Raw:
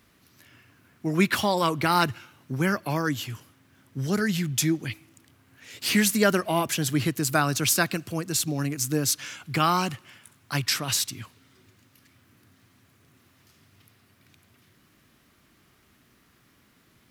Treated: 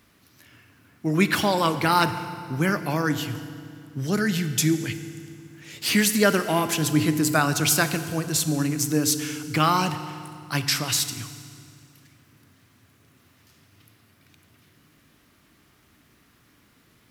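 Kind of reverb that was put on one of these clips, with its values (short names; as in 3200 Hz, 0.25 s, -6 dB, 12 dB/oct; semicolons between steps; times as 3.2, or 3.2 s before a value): FDN reverb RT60 2.3 s, low-frequency decay 1.35×, high-frequency decay 0.85×, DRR 9.5 dB; gain +1.5 dB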